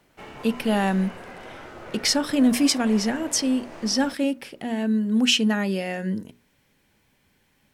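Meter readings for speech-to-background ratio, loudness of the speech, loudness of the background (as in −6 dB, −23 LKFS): 17.5 dB, −23.5 LKFS, −41.0 LKFS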